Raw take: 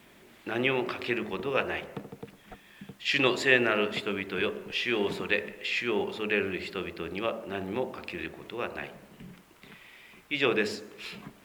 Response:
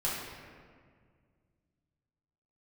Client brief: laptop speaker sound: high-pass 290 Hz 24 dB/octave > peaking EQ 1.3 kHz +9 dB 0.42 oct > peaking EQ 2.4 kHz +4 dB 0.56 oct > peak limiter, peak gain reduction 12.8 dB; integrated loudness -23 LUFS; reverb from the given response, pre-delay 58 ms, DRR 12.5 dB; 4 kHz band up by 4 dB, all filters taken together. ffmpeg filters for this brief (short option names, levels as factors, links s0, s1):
-filter_complex "[0:a]equalizer=f=4000:t=o:g=3.5,asplit=2[s0][s1];[1:a]atrim=start_sample=2205,adelay=58[s2];[s1][s2]afir=irnorm=-1:irlink=0,volume=0.106[s3];[s0][s3]amix=inputs=2:normalize=0,highpass=f=290:w=0.5412,highpass=f=290:w=1.3066,equalizer=f=1300:t=o:w=0.42:g=9,equalizer=f=2400:t=o:w=0.56:g=4,volume=2.11,alimiter=limit=0.335:level=0:latency=1"